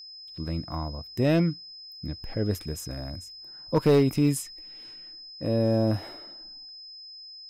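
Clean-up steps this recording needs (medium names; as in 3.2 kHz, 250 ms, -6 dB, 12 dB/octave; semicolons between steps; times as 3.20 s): clip repair -14 dBFS; band-stop 5.1 kHz, Q 30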